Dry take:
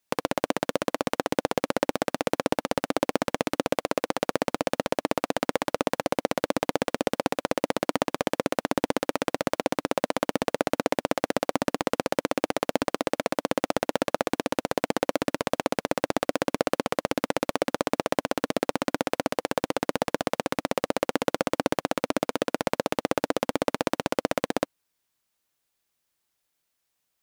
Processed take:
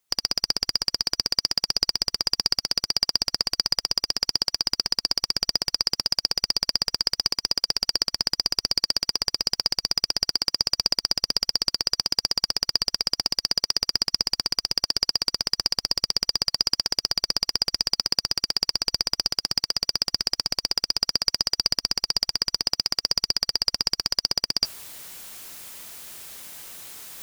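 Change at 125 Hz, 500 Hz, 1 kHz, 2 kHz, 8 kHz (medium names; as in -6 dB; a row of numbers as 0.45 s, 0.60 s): -4.0 dB, -15.5 dB, -10.5 dB, -5.0 dB, +7.5 dB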